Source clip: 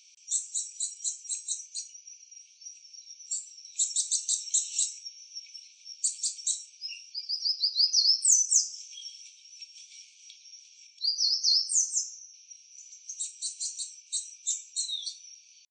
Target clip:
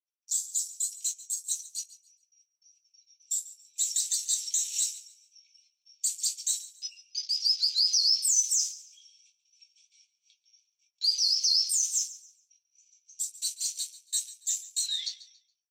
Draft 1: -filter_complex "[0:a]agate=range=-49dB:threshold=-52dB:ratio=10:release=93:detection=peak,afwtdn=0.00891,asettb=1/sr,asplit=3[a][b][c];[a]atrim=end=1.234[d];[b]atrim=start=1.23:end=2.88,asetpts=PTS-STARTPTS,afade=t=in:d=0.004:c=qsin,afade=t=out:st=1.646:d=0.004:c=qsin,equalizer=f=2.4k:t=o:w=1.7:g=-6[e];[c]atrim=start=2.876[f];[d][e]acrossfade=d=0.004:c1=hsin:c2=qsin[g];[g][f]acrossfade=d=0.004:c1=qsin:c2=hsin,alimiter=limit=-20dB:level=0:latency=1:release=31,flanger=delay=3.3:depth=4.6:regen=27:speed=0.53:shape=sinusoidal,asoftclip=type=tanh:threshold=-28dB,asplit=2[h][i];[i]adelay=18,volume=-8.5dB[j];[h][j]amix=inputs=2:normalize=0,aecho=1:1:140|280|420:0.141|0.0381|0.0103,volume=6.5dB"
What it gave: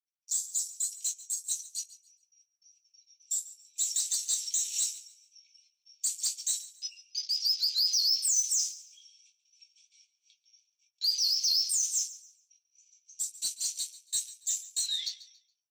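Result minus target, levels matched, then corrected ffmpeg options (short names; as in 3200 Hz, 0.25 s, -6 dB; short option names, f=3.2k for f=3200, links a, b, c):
soft clip: distortion +20 dB
-filter_complex "[0:a]agate=range=-49dB:threshold=-52dB:ratio=10:release=93:detection=peak,afwtdn=0.00891,asettb=1/sr,asplit=3[a][b][c];[a]atrim=end=1.234[d];[b]atrim=start=1.23:end=2.88,asetpts=PTS-STARTPTS,afade=t=in:d=0.004:c=qsin,afade=t=out:st=1.646:d=0.004:c=qsin,equalizer=f=2.4k:t=o:w=1.7:g=-6[e];[c]atrim=start=2.876[f];[d][e]acrossfade=d=0.004:c1=hsin:c2=qsin[g];[g][f]acrossfade=d=0.004:c1=qsin:c2=hsin,alimiter=limit=-20dB:level=0:latency=1:release=31,flanger=delay=3.3:depth=4.6:regen=27:speed=0.53:shape=sinusoidal,asoftclip=type=tanh:threshold=-16dB,asplit=2[h][i];[i]adelay=18,volume=-8.5dB[j];[h][j]amix=inputs=2:normalize=0,aecho=1:1:140|280|420:0.141|0.0381|0.0103,volume=6.5dB"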